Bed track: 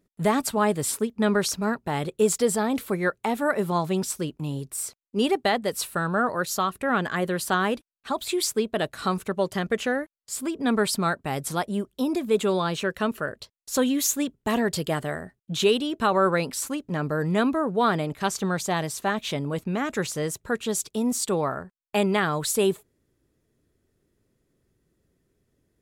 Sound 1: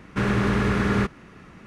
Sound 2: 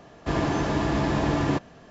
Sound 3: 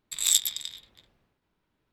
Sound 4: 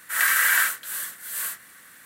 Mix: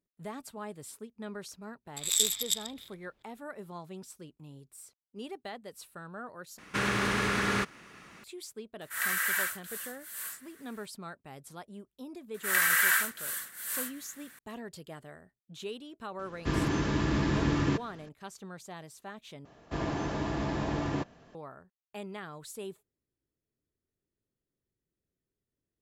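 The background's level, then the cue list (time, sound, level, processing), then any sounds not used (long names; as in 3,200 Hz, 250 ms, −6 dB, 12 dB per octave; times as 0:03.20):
bed track −19 dB
0:01.85: mix in 3 −5 dB + delay that plays each chunk backwards 172 ms, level −2 dB
0:06.58: overwrite with 1 −3.5 dB + spectral tilt +3 dB per octave
0:08.81: mix in 4 −10 dB
0:12.34: mix in 4 −5 dB
0:16.19: mix in 2 −2.5 dB + parametric band 700 Hz −11 dB 0.78 octaves
0:19.45: overwrite with 2 −8 dB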